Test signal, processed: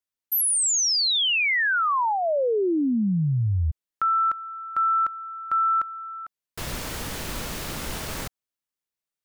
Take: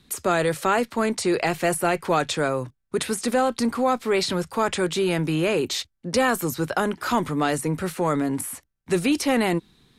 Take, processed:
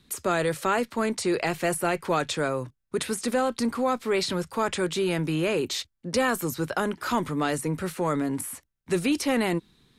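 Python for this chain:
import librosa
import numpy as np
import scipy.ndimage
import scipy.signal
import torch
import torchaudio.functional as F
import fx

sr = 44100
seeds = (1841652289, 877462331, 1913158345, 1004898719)

y = fx.peak_eq(x, sr, hz=750.0, db=-3.0, octaves=0.24)
y = F.gain(torch.from_numpy(y), -3.0).numpy()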